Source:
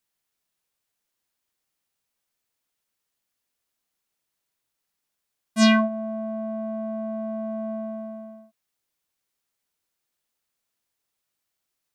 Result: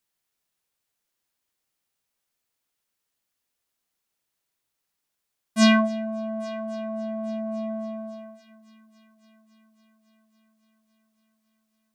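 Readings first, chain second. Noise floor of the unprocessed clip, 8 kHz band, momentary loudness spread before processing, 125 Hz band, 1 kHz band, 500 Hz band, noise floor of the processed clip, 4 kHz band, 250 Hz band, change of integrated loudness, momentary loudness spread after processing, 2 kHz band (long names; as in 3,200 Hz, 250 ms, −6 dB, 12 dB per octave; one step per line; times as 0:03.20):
−82 dBFS, 0.0 dB, 17 LU, can't be measured, 0.0 dB, −0.5 dB, −81 dBFS, 0.0 dB, 0.0 dB, 0.0 dB, 17 LU, 0.0 dB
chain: echo machine with several playback heads 278 ms, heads first and third, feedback 64%, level −23.5 dB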